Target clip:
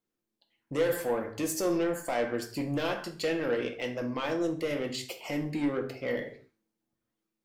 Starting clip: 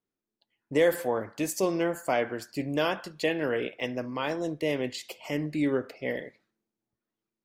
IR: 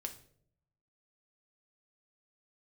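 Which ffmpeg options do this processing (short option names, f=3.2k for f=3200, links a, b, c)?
-filter_complex "[0:a]asplit=2[a][b];[b]alimiter=limit=-22.5dB:level=0:latency=1:release=179,volume=0.5dB[c];[a][c]amix=inputs=2:normalize=0,asoftclip=type=tanh:threshold=-19.5dB[d];[1:a]atrim=start_sample=2205,afade=t=out:st=0.25:d=0.01,atrim=end_sample=11466[e];[d][e]afir=irnorm=-1:irlink=0,volume=-2dB"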